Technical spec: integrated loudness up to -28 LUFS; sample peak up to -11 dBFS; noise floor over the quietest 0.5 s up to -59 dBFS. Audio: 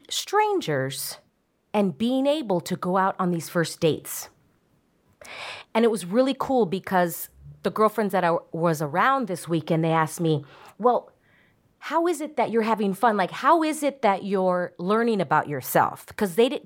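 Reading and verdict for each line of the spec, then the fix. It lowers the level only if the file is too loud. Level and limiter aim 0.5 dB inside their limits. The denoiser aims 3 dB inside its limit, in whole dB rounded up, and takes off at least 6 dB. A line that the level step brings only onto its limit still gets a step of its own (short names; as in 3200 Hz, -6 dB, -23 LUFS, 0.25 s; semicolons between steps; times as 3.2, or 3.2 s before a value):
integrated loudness -24.0 LUFS: fail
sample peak -7.5 dBFS: fail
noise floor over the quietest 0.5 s -68 dBFS: OK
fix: gain -4.5 dB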